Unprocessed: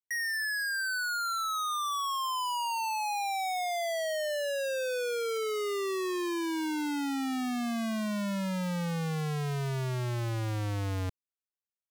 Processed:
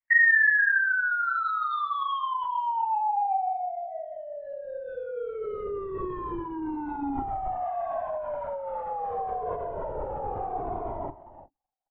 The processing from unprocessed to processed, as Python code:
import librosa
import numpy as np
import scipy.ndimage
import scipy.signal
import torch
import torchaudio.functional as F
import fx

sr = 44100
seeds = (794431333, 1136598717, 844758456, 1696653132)

y = scipy.signal.sosfilt(scipy.signal.cheby1(10, 1.0, 270.0, 'highpass', fs=sr, output='sos'), x)
y = fx.peak_eq(y, sr, hz=660.0, db=7.5, octaves=1.0)
y = fx.over_compress(y, sr, threshold_db=-30.0, ratio=-0.5)
y = fx.dmg_crackle(y, sr, seeds[0], per_s=40.0, level_db=-61.0)
y = fx.lowpass_res(y, sr, hz=fx.steps((0.0, 1900.0), (2.44, 780.0)), q=4.8)
y = fx.doubler(y, sr, ms=32.0, db=-13)
y = y + 10.0 ** (-15.0 / 20.0) * np.pad(y, (int(353 * sr / 1000.0), 0))[:len(y)]
y = fx.lpc_vocoder(y, sr, seeds[1], excitation='whisper', order=16)
y = fx.comb_cascade(y, sr, direction='falling', hz=0.27)